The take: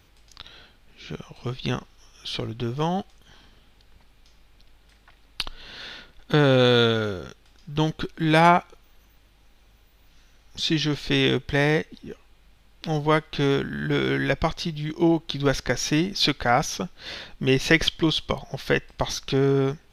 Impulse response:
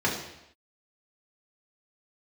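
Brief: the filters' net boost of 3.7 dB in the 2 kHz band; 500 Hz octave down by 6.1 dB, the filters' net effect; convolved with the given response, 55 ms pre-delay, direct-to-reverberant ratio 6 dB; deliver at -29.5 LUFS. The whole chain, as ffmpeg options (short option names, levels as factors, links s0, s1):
-filter_complex "[0:a]equalizer=f=500:t=o:g=-8,equalizer=f=2000:t=o:g=5,asplit=2[s0][s1];[1:a]atrim=start_sample=2205,adelay=55[s2];[s1][s2]afir=irnorm=-1:irlink=0,volume=0.119[s3];[s0][s3]amix=inputs=2:normalize=0,volume=0.447"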